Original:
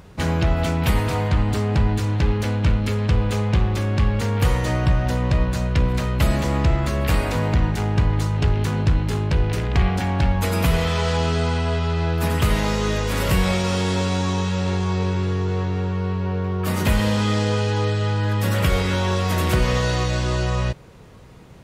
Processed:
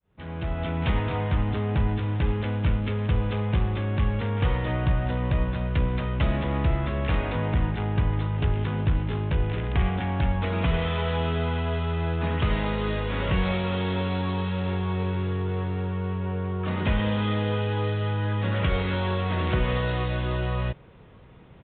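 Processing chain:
fade in at the beginning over 0.86 s
downsampling to 8,000 Hz
level −5 dB

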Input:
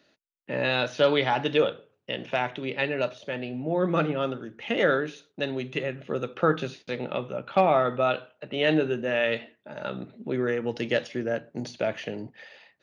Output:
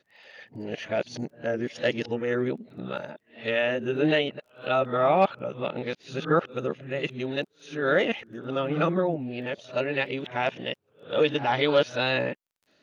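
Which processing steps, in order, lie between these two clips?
played backwards from end to start
tape wow and flutter 23 cents
surface crackle 18 per second −52 dBFS

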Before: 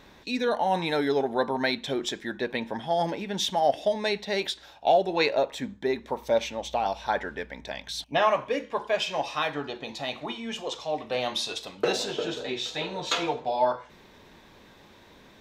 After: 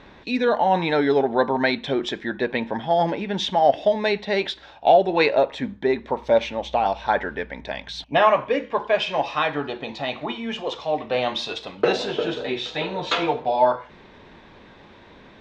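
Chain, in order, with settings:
low-pass filter 3,300 Hz 12 dB per octave
level +6 dB

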